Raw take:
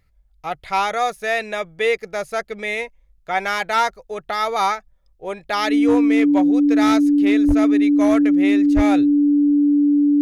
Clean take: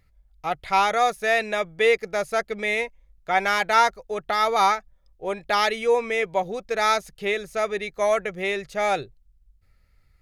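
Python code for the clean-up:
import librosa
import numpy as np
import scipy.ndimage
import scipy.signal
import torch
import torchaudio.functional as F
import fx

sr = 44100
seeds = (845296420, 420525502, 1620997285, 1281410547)

y = fx.fix_declip(x, sr, threshold_db=-9.5)
y = fx.notch(y, sr, hz=290.0, q=30.0)
y = fx.highpass(y, sr, hz=140.0, slope=24, at=(7.47, 7.59), fade=0.02)
y = fx.highpass(y, sr, hz=140.0, slope=24, at=(8.75, 8.87), fade=0.02)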